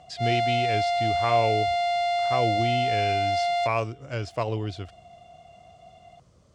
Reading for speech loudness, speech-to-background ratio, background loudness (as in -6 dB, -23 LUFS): -29.5 LUFS, -4.5 dB, -25.0 LUFS